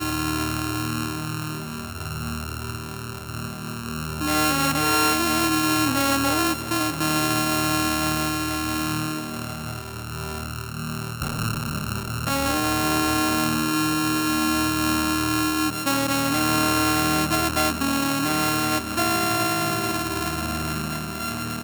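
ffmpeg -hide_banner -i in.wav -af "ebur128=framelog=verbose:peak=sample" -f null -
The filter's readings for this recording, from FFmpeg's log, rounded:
Integrated loudness:
  I:         -23.2 LUFS
  Threshold: -33.2 LUFS
Loudness range:
  LRA:         7.9 LU
  Threshold: -43.0 LUFS
  LRA low:   -28.8 LUFS
  LRA high:  -20.9 LUFS
Sample peak:
  Peak:       -5.6 dBFS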